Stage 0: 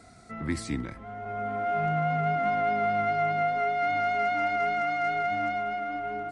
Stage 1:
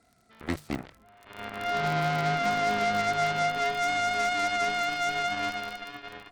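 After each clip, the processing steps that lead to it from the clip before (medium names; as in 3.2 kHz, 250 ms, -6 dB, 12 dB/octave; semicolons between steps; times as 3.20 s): crackle 70 per s -34 dBFS; Chebyshev shaper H 7 -15 dB, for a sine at -16.5 dBFS; hum notches 50/100/150 Hz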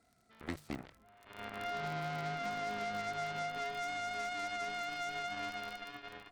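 compression, threshold -28 dBFS, peak gain reduction 6.5 dB; trim -6.5 dB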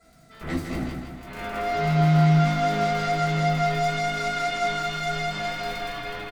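peak limiter -32.5 dBFS, peak gain reduction 7 dB; feedback delay 160 ms, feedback 53%, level -6 dB; reverberation RT60 0.30 s, pre-delay 3 ms, DRR -6.5 dB; trim +5 dB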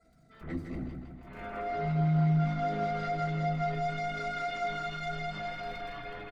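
resonances exaggerated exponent 1.5; trim -8 dB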